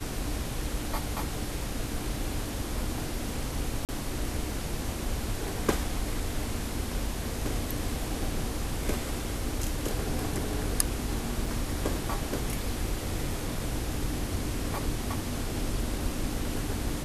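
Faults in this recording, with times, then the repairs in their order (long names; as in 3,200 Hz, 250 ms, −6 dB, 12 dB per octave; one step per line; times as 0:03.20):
0:03.85–0:03.89: drop-out 38 ms
0:11.46: drop-out 3.9 ms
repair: repair the gap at 0:03.85, 38 ms
repair the gap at 0:11.46, 3.9 ms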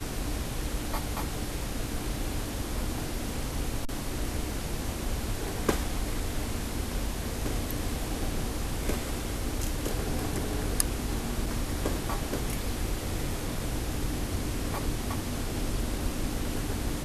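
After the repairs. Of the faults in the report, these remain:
none of them is left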